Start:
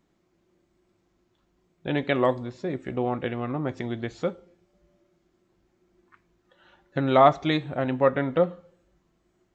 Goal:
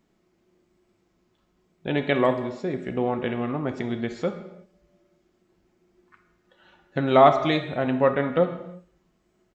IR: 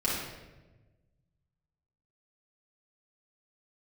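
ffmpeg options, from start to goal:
-filter_complex "[0:a]asplit=2[link_01][link_02];[link_02]aecho=1:1:4.8:0.65[link_03];[1:a]atrim=start_sample=2205,afade=type=out:start_time=0.41:duration=0.01,atrim=end_sample=18522,lowshelf=frequency=240:gain=-9[link_04];[link_03][link_04]afir=irnorm=-1:irlink=0,volume=-15dB[link_05];[link_01][link_05]amix=inputs=2:normalize=0"

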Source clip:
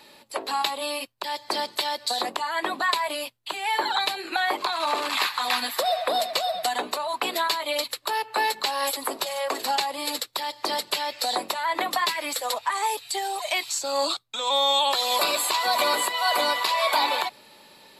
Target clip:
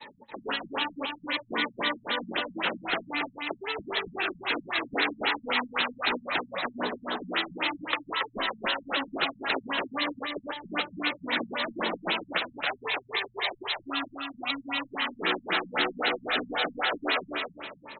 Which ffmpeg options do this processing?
ffmpeg -i in.wav -filter_complex "[0:a]afftfilt=real='re*pow(10,8/40*sin(2*PI*(0.98*log(max(b,1)*sr/1024/100)/log(2)-(-0.61)*(pts-256)/sr)))':imag='im*pow(10,8/40*sin(2*PI*(0.98*log(max(b,1)*sr/1024/100)/log(2)-(-0.61)*(pts-256)/sr)))':win_size=1024:overlap=0.75,agate=range=-33dB:threshold=-46dB:ratio=3:detection=peak,acrossover=split=860|3900[link_01][link_02][link_03];[link_01]volume=20dB,asoftclip=hard,volume=-20dB[link_04];[link_02]acontrast=60[link_05];[link_04][link_05][link_03]amix=inputs=3:normalize=0,afftfilt=real='re*lt(hypot(re,im),0.126)':imag='im*lt(hypot(re,im),0.126)':win_size=1024:overlap=0.75,asplit=2[link_06][link_07];[link_07]aecho=0:1:277|554|831|1108:0.562|0.174|0.054|0.0168[link_08];[link_06][link_08]amix=inputs=2:normalize=0,afftfilt=real='re*lt(b*sr/1024,210*pow(4200/210,0.5+0.5*sin(2*PI*3.8*pts/sr)))':imag='im*lt(b*sr/1024,210*pow(4200/210,0.5+0.5*sin(2*PI*3.8*pts/sr)))':win_size=1024:overlap=0.75,volume=6.5dB" out.wav

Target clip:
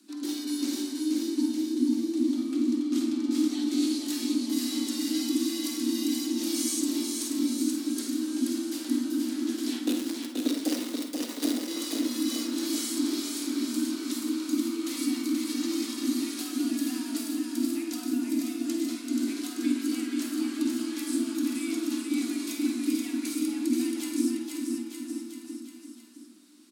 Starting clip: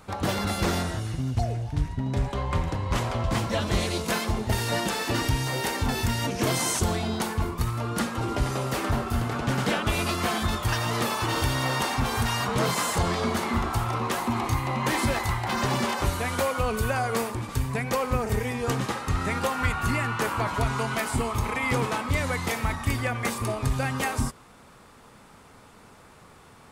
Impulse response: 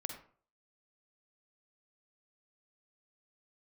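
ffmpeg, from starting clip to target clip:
-filter_complex "[0:a]firequalizer=gain_entry='entry(120,0);entry(240,-28);entry(3900,-1)':delay=0.05:min_phase=1,asettb=1/sr,asplit=3[link_01][link_02][link_03];[link_01]atrim=end=9.794[link_04];[link_02]atrim=start=9.79:end=11.68,asetpts=PTS-STARTPTS,afade=type=in:duration=0.004:curve=qsin,afade=type=out:start_time=1.886:duration=0.004:curve=qsin,acrusher=bits=3:mix=0:aa=0.5[link_05];[link_03]atrim=start=11.676[link_06];[link_04][link_05]acrossfade=duration=0.004:curve1=hsin:curve2=qsin[link_07];[link_07][link_06]acrossfade=duration=0.004:curve1=qsin:curve2=hsin,afreqshift=200,aecho=1:1:480|912|1301|1651|1966:0.631|0.398|0.251|0.158|0.1[link_08];[1:a]atrim=start_sample=2205[link_09];[link_08][link_09]afir=irnorm=-1:irlink=0"

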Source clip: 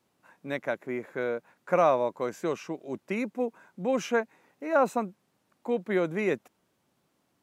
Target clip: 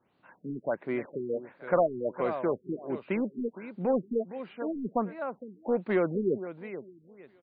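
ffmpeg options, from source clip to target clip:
ffmpeg -i in.wav -filter_complex "[0:a]aecho=1:1:462|924|1386:0.2|0.0479|0.0115,asplit=2[link_01][link_02];[link_02]asoftclip=type=hard:threshold=-27dB,volume=-5dB[link_03];[link_01][link_03]amix=inputs=2:normalize=0,acrossover=split=3500[link_04][link_05];[link_05]acompressor=threshold=-60dB:ratio=4:attack=1:release=60[link_06];[link_04][link_06]amix=inputs=2:normalize=0,afftfilt=real='re*lt(b*sr/1024,410*pow(4900/410,0.5+0.5*sin(2*PI*1.4*pts/sr)))':imag='im*lt(b*sr/1024,410*pow(4900/410,0.5+0.5*sin(2*PI*1.4*pts/sr)))':win_size=1024:overlap=0.75,volume=-2dB" out.wav

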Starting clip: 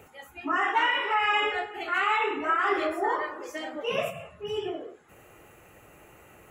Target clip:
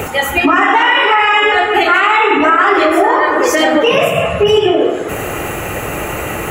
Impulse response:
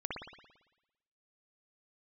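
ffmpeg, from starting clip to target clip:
-filter_complex "[0:a]acompressor=threshold=-40dB:ratio=5,asplit=2[link_01][link_02];[1:a]atrim=start_sample=2205,adelay=81[link_03];[link_02][link_03]afir=irnorm=-1:irlink=0,volume=-10.5dB[link_04];[link_01][link_04]amix=inputs=2:normalize=0,alimiter=level_in=33dB:limit=-1dB:release=50:level=0:latency=1,volume=-1dB"

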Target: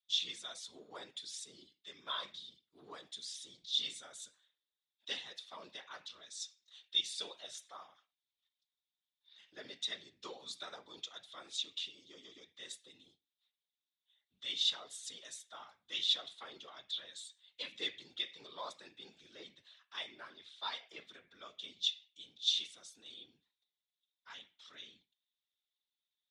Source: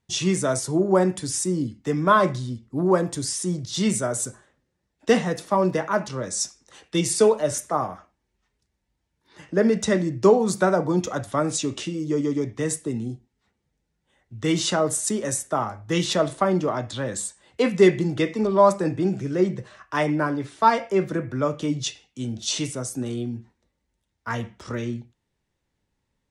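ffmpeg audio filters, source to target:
ffmpeg -i in.wav -af "afftfilt=real='hypot(re,im)*cos(2*PI*random(0))':imag='hypot(re,im)*sin(2*PI*random(1))':win_size=512:overlap=0.75,bandpass=frequency=3600:width_type=q:width=7.8:csg=0,volume=7.5dB" out.wav

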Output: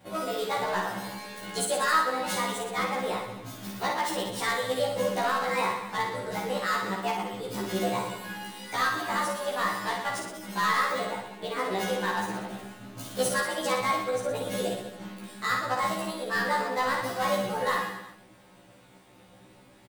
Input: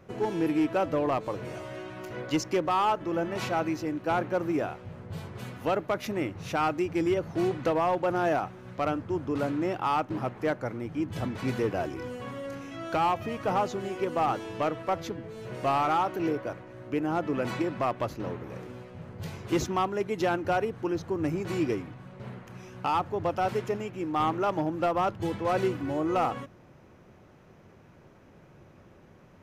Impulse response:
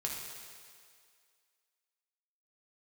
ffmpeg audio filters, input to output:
-filter_complex "[0:a]afftfilt=real='re':imag='-im':win_size=2048:overlap=0.75,asplit=2[link_01][link_02];[link_02]adelay=15,volume=-5.5dB[link_03];[link_01][link_03]amix=inputs=2:normalize=0,asplit=2[link_04][link_05];[link_05]aecho=0:1:80|172|277.8|399.5|539.4:0.631|0.398|0.251|0.158|0.1[link_06];[link_04][link_06]amix=inputs=2:normalize=0,crystalizer=i=3.5:c=0,asetrate=65268,aresample=44100"

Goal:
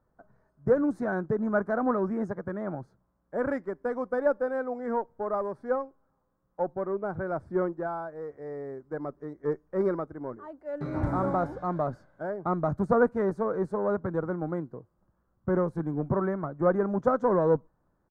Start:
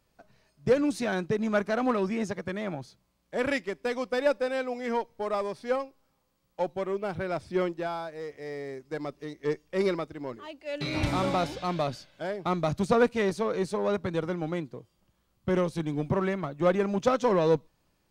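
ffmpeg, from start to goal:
ffmpeg -i in.wav -af "firequalizer=gain_entry='entry(1500,0);entry(2600,-30);entry(7600,-20)':delay=0.05:min_phase=1" out.wav

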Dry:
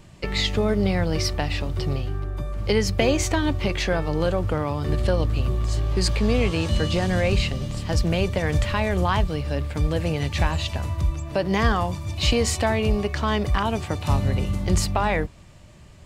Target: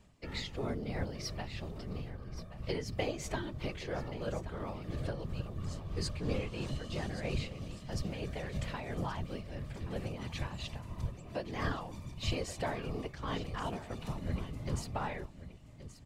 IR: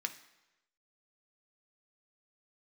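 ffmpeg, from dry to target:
-af "tremolo=f=3:d=0.5,afftfilt=real='hypot(re,im)*cos(2*PI*random(0))':imag='hypot(re,im)*sin(2*PI*random(1))':win_size=512:overlap=0.75,aecho=1:1:1126:0.211,volume=-7.5dB"

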